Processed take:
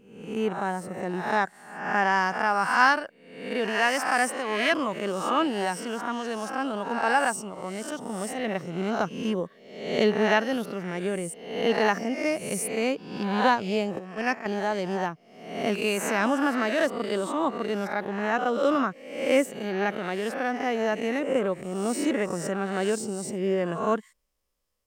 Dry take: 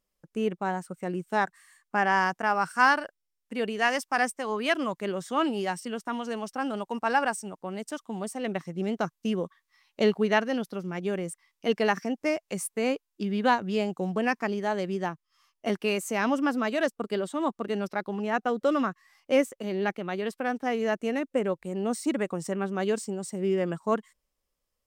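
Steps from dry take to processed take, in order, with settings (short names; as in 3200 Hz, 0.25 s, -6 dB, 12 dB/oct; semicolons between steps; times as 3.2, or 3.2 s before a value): spectral swells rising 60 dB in 0.76 s; 13.99–14.46 gate -23 dBFS, range -12 dB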